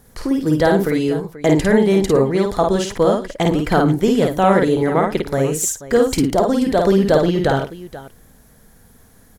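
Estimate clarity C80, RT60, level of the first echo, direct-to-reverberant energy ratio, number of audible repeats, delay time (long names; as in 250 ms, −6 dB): no reverb audible, no reverb audible, −3.0 dB, no reverb audible, 3, 52 ms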